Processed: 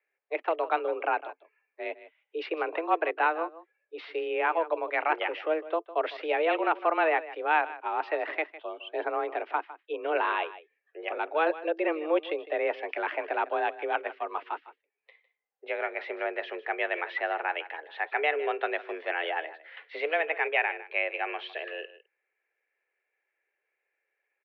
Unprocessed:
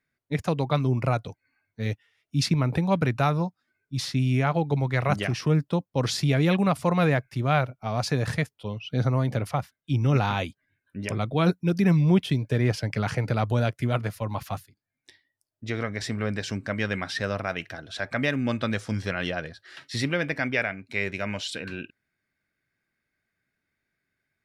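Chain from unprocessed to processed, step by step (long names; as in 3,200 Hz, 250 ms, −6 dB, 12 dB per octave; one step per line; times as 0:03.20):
single-tap delay 155 ms −16 dB
single-sideband voice off tune +160 Hz 260–2,800 Hz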